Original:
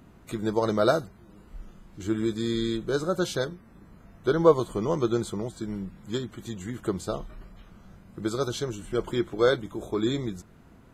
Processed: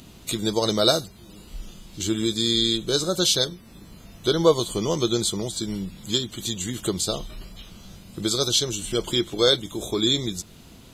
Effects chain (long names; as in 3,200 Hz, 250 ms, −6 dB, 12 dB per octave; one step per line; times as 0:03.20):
high shelf with overshoot 2,400 Hz +12.5 dB, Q 1.5
in parallel at −1 dB: downward compressor, threshold −33 dBFS, peak gain reduction 19 dB